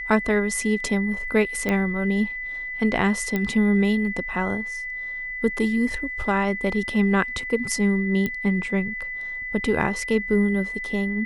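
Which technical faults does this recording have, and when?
whistle 2,000 Hz −29 dBFS
0:01.69: click −11 dBFS
0:03.36: click −12 dBFS
0:08.26: click −13 dBFS

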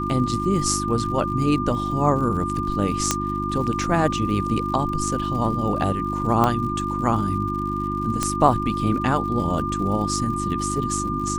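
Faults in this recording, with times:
surface crackle 100 per second −33 dBFS
mains hum 50 Hz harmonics 7 −28 dBFS
whistle 1,200 Hz −26 dBFS
0:03.11: click −3 dBFS
0:06.44: click −7 dBFS
0:08.23: click −7 dBFS

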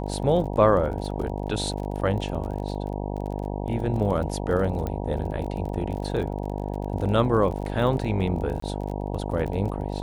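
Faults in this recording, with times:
mains buzz 50 Hz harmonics 19 −30 dBFS
surface crackle 34 per second −33 dBFS
0:04.87: click −17 dBFS
0:08.60–0:08.62: drop-out 24 ms

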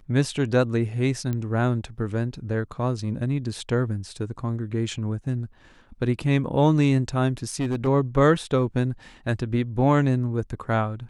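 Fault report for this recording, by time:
0:01.33: click −17 dBFS
0:07.43–0:07.88: clipping −21 dBFS

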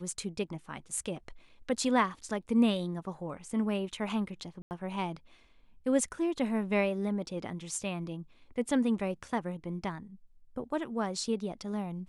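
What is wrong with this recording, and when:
0:04.62–0:04.71: drop-out 89 ms

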